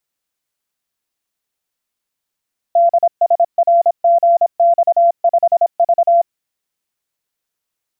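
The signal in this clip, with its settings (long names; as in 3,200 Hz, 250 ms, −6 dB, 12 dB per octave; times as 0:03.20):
Morse code "DSRGX5V" 26 words per minute 684 Hz −7.5 dBFS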